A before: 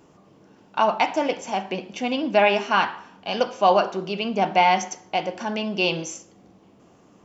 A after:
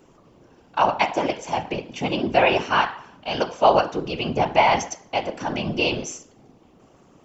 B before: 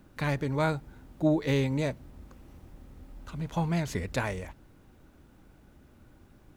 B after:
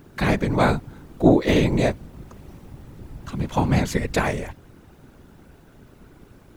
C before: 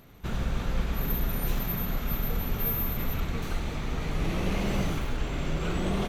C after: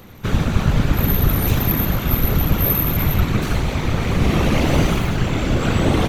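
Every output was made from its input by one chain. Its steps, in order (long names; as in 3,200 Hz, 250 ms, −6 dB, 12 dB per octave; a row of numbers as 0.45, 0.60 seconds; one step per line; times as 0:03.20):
random phases in short frames
normalise the peak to −3 dBFS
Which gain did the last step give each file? +0.5, +8.5, +11.5 decibels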